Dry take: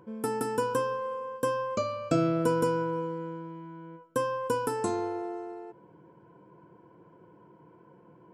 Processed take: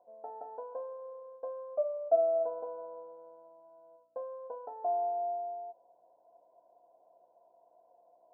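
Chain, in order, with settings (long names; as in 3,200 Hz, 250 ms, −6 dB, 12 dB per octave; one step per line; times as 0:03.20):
mains hum 60 Hz, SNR 16 dB
flat-topped band-pass 680 Hz, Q 5.3
level +8.5 dB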